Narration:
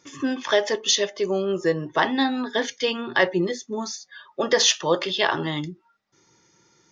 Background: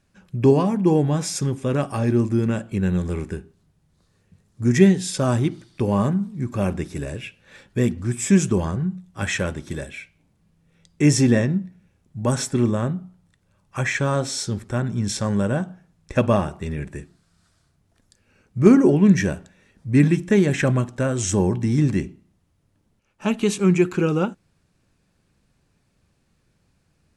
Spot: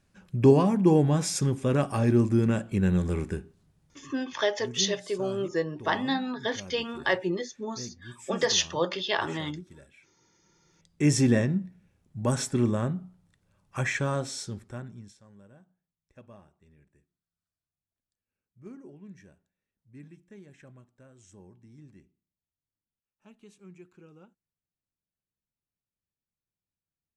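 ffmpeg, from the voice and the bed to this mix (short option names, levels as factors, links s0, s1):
-filter_complex "[0:a]adelay=3900,volume=0.501[s0];[1:a]volume=5.01,afade=t=out:st=3.85:d=0.58:silence=0.112202,afade=t=in:st=10.18:d=1.07:silence=0.149624,afade=t=out:st=13.83:d=1.32:silence=0.0421697[s1];[s0][s1]amix=inputs=2:normalize=0"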